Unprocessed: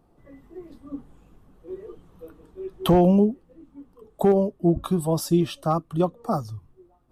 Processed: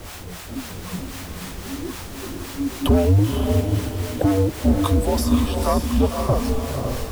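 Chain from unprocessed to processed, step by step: in parallel at +2 dB: compressor, threshold -25 dBFS, peak gain reduction 11.5 dB; on the sum: added noise pink -37 dBFS; frequency shift -100 Hz; harmonic tremolo 3.8 Hz, depth 70%, crossover 590 Hz; soft clip -13.5 dBFS, distortion -14 dB; on a send: diffused feedback echo 0.526 s, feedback 40%, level -4 dB; on the sum: gain +4 dB

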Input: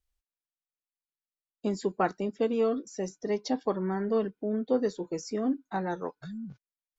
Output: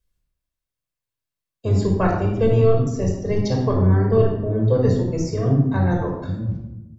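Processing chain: octaver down 1 oct, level +1 dB; shoebox room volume 2900 m³, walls furnished, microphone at 5.3 m; gain +2 dB

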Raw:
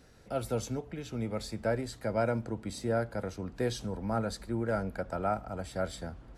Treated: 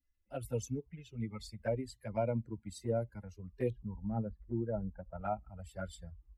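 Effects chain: per-bin expansion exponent 2; 3.7–5.21 LPF 1200 Hz 24 dB/oct; envelope flanger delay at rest 3.5 ms, full sweep at -30.5 dBFS; gain +1 dB

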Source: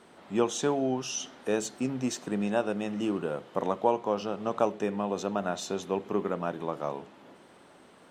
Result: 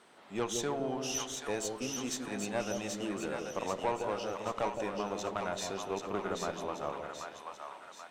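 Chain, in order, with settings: low shelf 460 Hz -10.5 dB; tube stage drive 24 dB, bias 0.45; split-band echo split 710 Hz, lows 0.163 s, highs 0.783 s, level -4 dB

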